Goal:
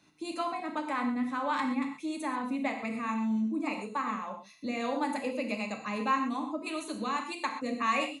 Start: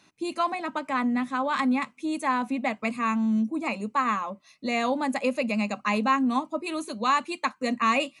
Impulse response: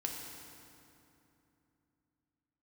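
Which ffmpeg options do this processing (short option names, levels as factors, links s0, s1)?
-filter_complex "[0:a]asplit=2[s0][s1];[s1]acompressor=threshold=0.0224:ratio=6,volume=1.12[s2];[s0][s2]amix=inputs=2:normalize=0,acrossover=split=410[s3][s4];[s3]aeval=exprs='val(0)*(1-0.5/2+0.5/2*cos(2*PI*1.7*n/s))':c=same[s5];[s4]aeval=exprs='val(0)*(1-0.5/2-0.5/2*cos(2*PI*1.7*n/s))':c=same[s6];[s5][s6]amix=inputs=2:normalize=0[s7];[1:a]atrim=start_sample=2205,afade=t=out:st=0.19:d=0.01,atrim=end_sample=8820[s8];[s7][s8]afir=irnorm=-1:irlink=0,volume=0.473"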